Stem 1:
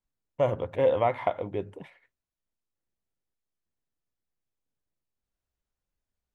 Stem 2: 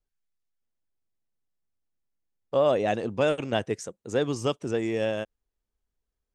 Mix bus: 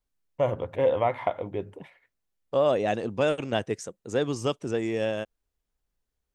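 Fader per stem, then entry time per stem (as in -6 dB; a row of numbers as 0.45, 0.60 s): 0.0, -0.5 dB; 0.00, 0.00 s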